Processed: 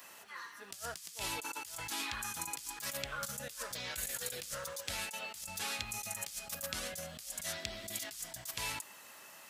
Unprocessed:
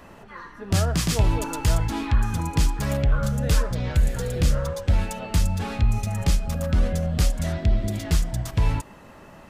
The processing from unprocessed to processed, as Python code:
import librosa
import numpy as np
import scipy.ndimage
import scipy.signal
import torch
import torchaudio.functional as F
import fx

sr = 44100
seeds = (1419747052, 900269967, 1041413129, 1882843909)

y = np.diff(x, prepend=0.0)
y = fx.over_compress(y, sr, threshold_db=-45.0, ratio=-1.0)
y = y * 10.0 ** (3.0 / 20.0)